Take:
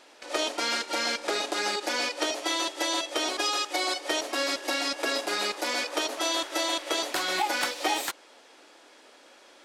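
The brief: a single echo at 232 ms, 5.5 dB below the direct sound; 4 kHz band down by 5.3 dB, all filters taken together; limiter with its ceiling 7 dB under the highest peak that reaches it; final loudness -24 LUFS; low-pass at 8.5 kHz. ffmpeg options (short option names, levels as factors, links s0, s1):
-af "lowpass=8500,equalizer=f=4000:t=o:g=-6.5,alimiter=limit=0.0841:level=0:latency=1,aecho=1:1:232:0.531,volume=2.11"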